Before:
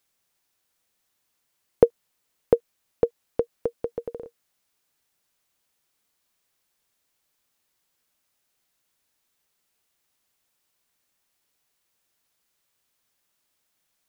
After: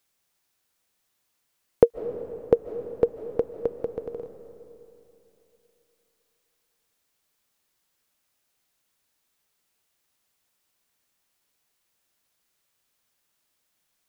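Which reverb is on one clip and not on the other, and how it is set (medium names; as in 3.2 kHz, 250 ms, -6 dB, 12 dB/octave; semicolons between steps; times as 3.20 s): algorithmic reverb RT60 3.1 s, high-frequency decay 0.6×, pre-delay 110 ms, DRR 10.5 dB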